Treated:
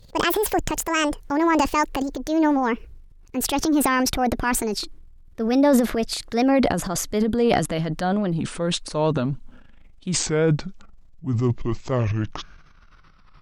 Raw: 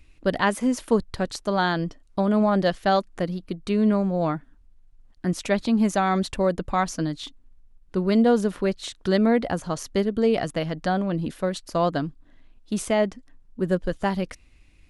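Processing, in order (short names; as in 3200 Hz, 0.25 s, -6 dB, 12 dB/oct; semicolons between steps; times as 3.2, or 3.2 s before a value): speed glide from 172% -> 50%; transient shaper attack -4 dB, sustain +10 dB; record warp 33 1/3 rpm, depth 160 cents; gain +1.5 dB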